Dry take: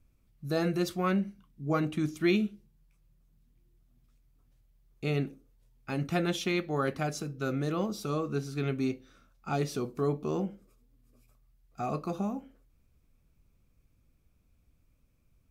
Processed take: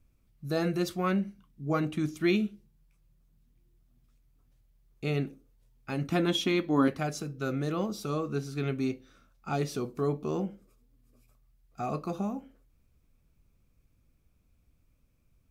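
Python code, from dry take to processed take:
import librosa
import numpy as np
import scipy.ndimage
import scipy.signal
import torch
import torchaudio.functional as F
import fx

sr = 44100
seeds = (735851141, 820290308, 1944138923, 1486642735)

y = fx.small_body(x, sr, hz=(280.0, 1000.0, 3300.0), ring_ms=85, db=15, at=(6.12, 6.88))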